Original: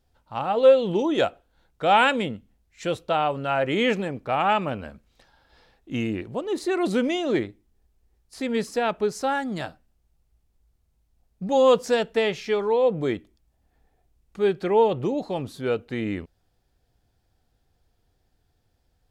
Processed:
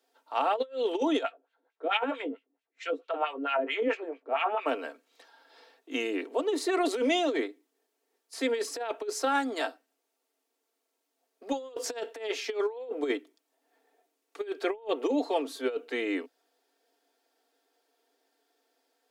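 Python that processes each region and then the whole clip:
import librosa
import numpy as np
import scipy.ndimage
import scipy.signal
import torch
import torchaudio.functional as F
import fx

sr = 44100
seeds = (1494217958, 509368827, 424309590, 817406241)

y = fx.chain(x, sr, fx.filter_lfo_bandpass(shape='sine', hz=4.5, low_hz=230.0, high_hz=2900.0, q=2.0),
    fx.doubler(ms=18.0, db=-9.5), at=(1.23, 4.66))
y = scipy.signal.sosfilt(scipy.signal.butter(16, 270.0, 'highpass', fs=sr, output='sos'), y)
y = y + 0.53 * np.pad(y, (int(4.4 * sr / 1000.0), 0))[:len(y)]
y = fx.over_compress(y, sr, threshold_db=-25.0, ratio=-0.5)
y = y * 10.0 ** (-3.0 / 20.0)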